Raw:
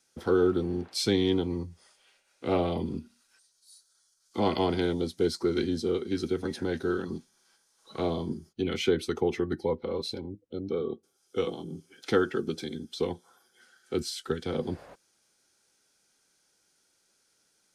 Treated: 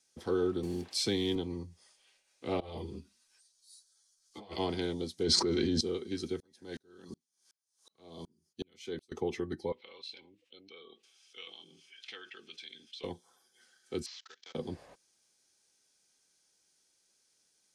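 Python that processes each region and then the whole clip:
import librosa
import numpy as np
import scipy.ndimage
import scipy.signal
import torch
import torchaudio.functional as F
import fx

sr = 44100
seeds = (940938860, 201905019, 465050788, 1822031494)

y = fx.chain(x, sr, fx.block_float(bits=7),
    fx.band_squash(depth_pct=40), at=(0.63, 1.36))
y = fx.chain(y, sr, fx.peak_eq(hz=230.0, db=-10.5, octaves=0.28),
    fx.over_compress(threshold_db=-32.0, ratio=-0.5),
    fx.ensemble(), at=(2.6, 4.58))
y = fx.chain(y, sr, fx.air_absorb(metres=81.0),
    fx.env_flatten(amount_pct=100), at=(5.23, 5.81))
y = fx.chain(y, sr, fx.highpass(hz=87.0, slope=12),
    fx.bass_treble(bass_db=-1, treble_db=7),
    fx.tremolo_decay(direction='swelling', hz=2.7, depth_db=38), at=(6.4, 9.12))
y = fx.chain(y, sr, fx.bandpass_q(hz=2700.0, q=3.0),
    fx.env_flatten(amount_pct=50), at=(9.72, 13.04))
y = fx.chain(y, sr, fx.cvsd(bps=32000),
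    fx.highpass(hz=1400.0, slope=12),
    fx.level_steps(step_db=23), at=(14.06, 14.55))
y = scipy.signal.sosfilt(scipy.signal.butter(2, 9700.0, 'lowpass', fs=sr, output='sos'), y)
y = fx.high_shelf(y, sr, hz=3500.0, db=8.0)
y = fx.notch(y, sr, hz=1400.0, q=8.9)
y = y * librosa.db_to_amplitude(-7.0)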